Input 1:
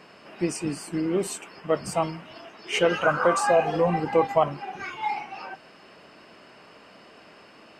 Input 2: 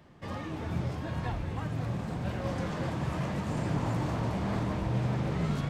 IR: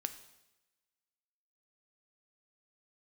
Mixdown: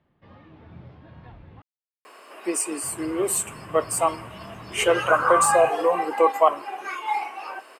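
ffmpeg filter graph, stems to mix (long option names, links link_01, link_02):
-filter_complex "[0:a]highpass=frequency=330:width=0.5412,highpass=frequency=330:width=1.3066,equalizer=frequency=1100:width=6.5:gain=8,aexciter=amount=4.1:drive=9:freq=7700,adelay=2050,volume=0dB,asplit=2[link_01][link_02];[link_02]volume=-10dB[link_03];[1:a]lowpass=frequency=4100:width=0.5412,lowpass=frequency=4100:width=1.3066,volume=-12dB,asplit=3[link_04][link_05][link_06];[link_04]atrim=end=1.62,asetpts=PTS-STARTPTS,afade=type=out:start_time=1.616:duration=0.004:curve=hsin[link_07];[link_05]atrim=start=1.62:end=2.83,asetpts=PTS-STARTPTS,volume=0[link_08];[link_06]atrim=start=2.83,asetpts=PTS-STARTPTS,afade=type=in:duration=0.004:curve=hsin[link_09];[link_07][link_08][link_09]concat=n=3:v=0:a=1[link_10];[2:a]atrim=start_sample=2205[link_11];[link_03][link_11]afir=irnorm=-1:irlink=0[link_12];[link_01][link_10][link_12]amix=inputs=3:normalize=0,highshelf=frequency=6300:gain=-5.5"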